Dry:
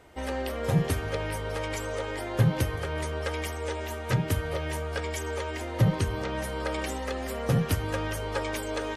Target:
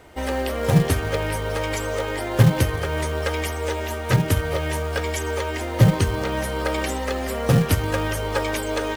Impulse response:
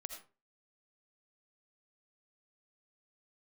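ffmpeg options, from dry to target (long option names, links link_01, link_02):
-filter_complex "[0:a]aeval=exprs='0.251*(cos(1*acos(clip(val(0)/0.251,-1,1)))-cos(1*PI/2))+0.0158*(cos(3*acos(clip(val(0)/0.251,-1,1)))-cos(3*PI/2))':channel_layout=same,acrossover=split=1600[link_01][link_02];[link_01]acrusher=bits=5:mode=log:mix=0:aa=0.000001[link_03];[link_03][link_02]amix=inputs=2:normalize=0,volume=8.5dB"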